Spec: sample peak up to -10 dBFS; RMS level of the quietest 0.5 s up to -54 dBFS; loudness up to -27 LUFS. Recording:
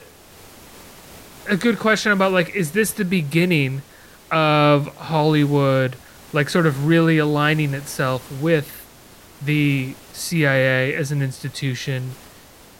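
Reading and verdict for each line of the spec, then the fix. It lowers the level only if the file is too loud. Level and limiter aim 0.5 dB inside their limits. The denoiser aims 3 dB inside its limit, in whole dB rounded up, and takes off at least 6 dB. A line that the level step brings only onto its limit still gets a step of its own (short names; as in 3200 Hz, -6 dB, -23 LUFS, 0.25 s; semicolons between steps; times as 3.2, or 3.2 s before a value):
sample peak -5.5 dBFS: fail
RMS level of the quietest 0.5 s -46 dBFS: fail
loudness -19.5 LUFS: fail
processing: denoiser 6 dB, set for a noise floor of -46 dBFS; gain -8 dB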